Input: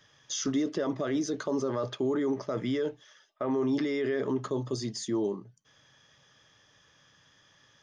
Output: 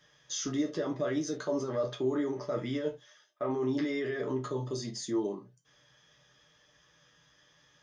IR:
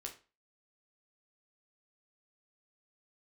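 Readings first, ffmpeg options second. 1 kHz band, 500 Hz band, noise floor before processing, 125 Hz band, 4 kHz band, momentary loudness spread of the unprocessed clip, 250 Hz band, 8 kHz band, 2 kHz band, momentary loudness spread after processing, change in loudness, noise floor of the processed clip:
-2.0 dB, -2.0 dB, -64 dBFS, -1.0 dB, -2.5 dB, 5 LU, -3.0 dB, -2.0 dB, -1.5 dB, 6 LU, -2.5 dB, -66 dBFS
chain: -filter_complex "[1:a]atrim=start_sample=2205,afade=t=out:st=0.17:d=0.01,atrim=end_sample=7938,asetrate=61740,aresample=44100[a];[0:a][a]afir=irnorm=-1:irlink=0,volume=4dB"

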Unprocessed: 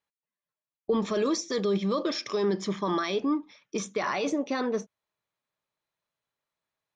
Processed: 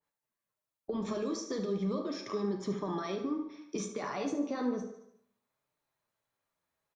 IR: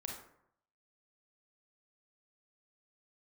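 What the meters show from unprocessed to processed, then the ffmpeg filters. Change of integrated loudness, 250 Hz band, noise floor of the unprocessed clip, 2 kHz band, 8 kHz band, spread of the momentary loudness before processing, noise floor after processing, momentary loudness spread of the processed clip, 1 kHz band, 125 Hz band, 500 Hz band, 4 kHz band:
-6.5 dB, -5.0 dB, under -85 dBFS, -11.0 dB, -7.0 dB, 6 LU, under -85 dBFS, 6 LU, -8.0 dB, -4.0 dB, -7.5 dB, -11.0 dB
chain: -filter_complex "[0:a]equalizer=f=3.3k:t=o:w=1.9:g=-5,alimiter=level_in=0.5dB:limit=-24dB:level=0:latency=1:release=458,volume=-0.5dB,acrossover=split=240|3000[a][b][c];[b]acompressor=threshold=-38dB:ratio=6[d];[a][d][c]amix=inputs=3:normalize=0,flanger=delay=6.5:depth=8:regen=48:speed=0.35:shape=triangular,aecho=1:1:74|148|222|296|370:0.237|0.111|0.0524|0.0246|0.0116,asplit=2[e][f];[1:a]atrim=start_sample=2205[g];[f][g]afir=irnorm=-1:irlink=0,volume=3dB[h];[e][h]amix=inputs=2:normalize=0,adynamicequalizer=threshold=0.002:dfrequency=1700:dqfactor=0.7:tfrequency=1700:tqfactor=0.7:attack=5:release=100:ratio=0.375:range=3.5:mode=cutabove:tftype=highshelf,volume=1.5dB"

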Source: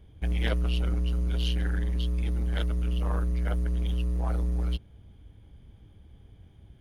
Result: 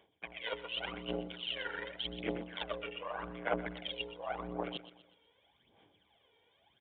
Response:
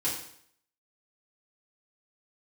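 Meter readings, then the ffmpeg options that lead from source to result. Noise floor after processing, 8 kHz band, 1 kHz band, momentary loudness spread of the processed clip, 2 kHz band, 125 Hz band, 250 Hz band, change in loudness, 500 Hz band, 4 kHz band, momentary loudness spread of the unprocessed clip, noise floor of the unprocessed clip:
-73 dBFS, under -25 dB, +1.5 dB, 5 LU, 0.0 dB, -23.5 dB, -8.5 dB, -10.5 dB, 0.0 dB, 0.0 dB, 2 LU, -55 dBFS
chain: -af "highpass=730,bandreject=f=1.3k:w=6.8,afwtdn=0.00316,equalizer=f=1.7k:w=3.4:g=-4.5,areverse,acompressor=threshold=-54dB:ratio=12,areverse,aphaser=in_gain=1:out_gain=1:delay=2.2:decay=0.67:speed=0.86:type=sinusoidal,aecho=1:1:123|246|369|492:0.2|0.0838|0.0352|0.0148,aresample=8000,aresample=44100,volume=16dB"

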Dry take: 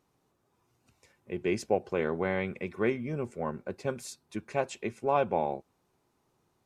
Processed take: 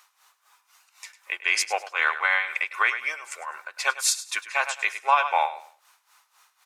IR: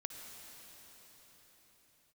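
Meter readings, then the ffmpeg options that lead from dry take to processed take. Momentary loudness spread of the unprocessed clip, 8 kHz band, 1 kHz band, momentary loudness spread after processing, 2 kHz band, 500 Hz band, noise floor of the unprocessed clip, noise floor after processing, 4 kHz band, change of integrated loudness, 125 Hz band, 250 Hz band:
10 LU, +19.0 dB, +9.5 dB, 13 LU, +16.5 dB, -6.5 dB, -75 dBFS, -70 dBFS, +17.5 dB, +8.0 dB, under -40 dB, under -25 dB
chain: -af "highpass=f=1.1k:w=0.5412,highpass=f=1.1k:w=1.3066,tremolo=f=3.9:d=0.86,aecho=1:1:102|204|306:0.178|0.0498|0.0139,alimiter=level_in=31dB:limit=-1dB:release=50:level=0:latency=1,volume=-8.5dB"

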